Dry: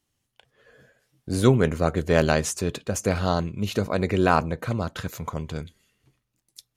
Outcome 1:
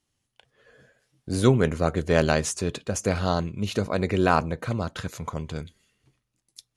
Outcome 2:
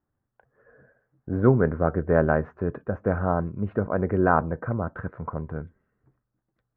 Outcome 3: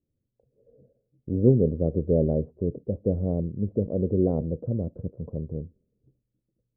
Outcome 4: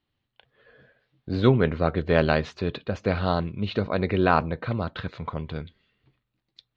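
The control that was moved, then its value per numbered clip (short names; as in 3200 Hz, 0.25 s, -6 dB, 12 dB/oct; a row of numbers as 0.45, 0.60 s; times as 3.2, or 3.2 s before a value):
Chebyshev low-pass, frequency: 11000, 1600, 530, 4100 Hz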